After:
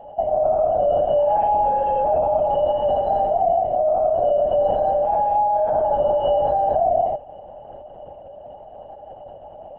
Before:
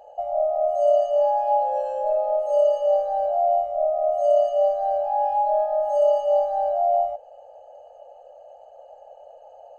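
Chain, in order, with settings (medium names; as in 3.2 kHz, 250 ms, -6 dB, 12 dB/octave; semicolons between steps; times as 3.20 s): 1.27–3.59 s: comb 6.1 ms, depth 50%; peak limiter -19 dBFS, peak gain reduction 9 dB; LPC vocoder at 8 kHz whisper; trim +6.5 dB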